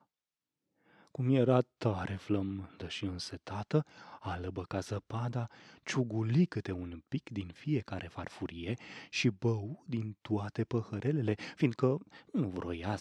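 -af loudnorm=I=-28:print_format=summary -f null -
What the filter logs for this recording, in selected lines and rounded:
Input Integrated:    -35.1 LUFS
Input True Peak:     -13.1 dBTP
Input LRA:             3.6 LU
Input Threshold:     -45.3 LUFS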